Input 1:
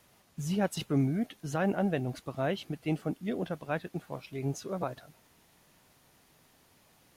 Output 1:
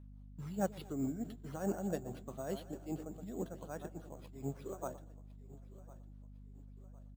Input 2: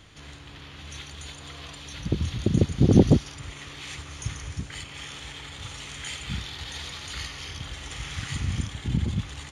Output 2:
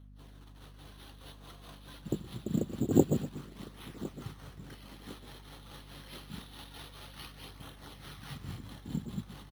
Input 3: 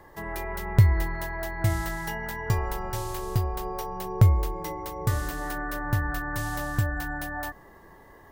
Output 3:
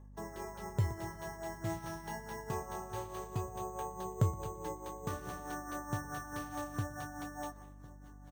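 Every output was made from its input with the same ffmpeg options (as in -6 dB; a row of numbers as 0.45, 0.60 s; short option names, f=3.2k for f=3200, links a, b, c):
-filter_complex "[0:a]asplit=2[a][b];[b]adelay=120,lowpass=f=1.7k:p=1,volume=-13dB,asplit=2[c][d];[d]adelay=120,lowpass=f=1.7k:p=1,volume=0.45,asplit=2[e][f];[f]adelay=120,lowpass=f=1.7k:p=1,volume=0.45,asplit=2[g][h];[h]adelay=120,lowpass=f=1.7k:p=1,volume=0.45[i];[c][e][g][i]amix=inputs=4:normalize=0[j];[a][j]amix=inputs=2:normalize=0,agate=range=-12dB:threshold=-44dB:ratio=16:detection=peak,equalizer=f=2.3k:t=o:w=0.93:g=-11.5,asplit=2[k][l];[l]aecho=0:1:1056|2112|3168:0.119|0.0499|0.021[m];[k][m]amix=inputs=2:normalize=0,tremolo=f=4.7:d=0.65,highpass=170,lowpass=4.6k,acrusher=samples=6:mix=1:aa=0.000001,flanger=delay=0.1:depth=5.7:regen=-64:speed=0.26:shape=sinusoidal,aeval=exprs='val(0)+0.00251*(sin(2*PI*50*n/s)+sin(2*PI*2*50*n/s)/2+sin(2*PI*3*50*n/s)/3+sin(2*PI*4*50*n/s)/4+sin(2*PI*5*50*n/s)/5)':c=same"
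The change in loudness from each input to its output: -9.0, -9.0, -12.5 LU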